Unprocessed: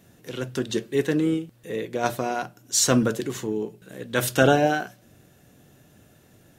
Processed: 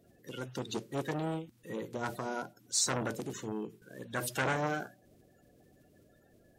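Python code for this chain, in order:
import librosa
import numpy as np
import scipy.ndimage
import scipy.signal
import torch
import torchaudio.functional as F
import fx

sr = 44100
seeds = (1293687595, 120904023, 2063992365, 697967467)

y = fx.spec_quant(x, sr, step_db=30)
y = fx.transformer_sat(y, sr, knee_hz=1600.0)
y = y * 10.0 ** (-8.0 / 20.0)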